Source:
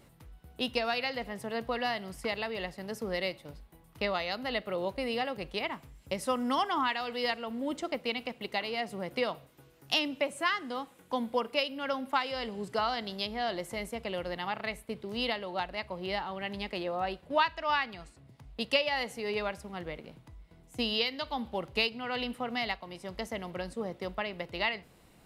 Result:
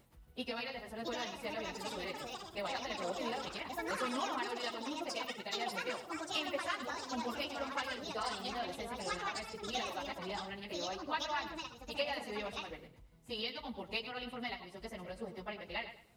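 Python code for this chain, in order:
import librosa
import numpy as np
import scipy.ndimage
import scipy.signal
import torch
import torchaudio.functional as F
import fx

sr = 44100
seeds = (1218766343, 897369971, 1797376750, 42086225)

y = fx.quant_dither(x, sr, seeds[0], bits=12, dither='none')
y = fx.stretch_vocoder_free(y, sr, factor=0.64)
y = fx.echo_feedback(y, sr, ms=104, feedback_pct=27, wet_db=-11)
y = fx.echo_pitch(y, sr, ms=767, semitones=5, count=2, db_per_echo=-3.0)
y = y * 10.0 ** (-5.0 / 20.0)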